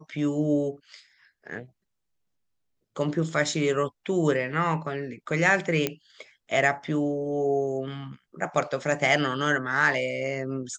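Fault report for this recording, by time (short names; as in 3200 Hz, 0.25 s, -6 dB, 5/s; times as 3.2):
5.87 pop -10 dBFS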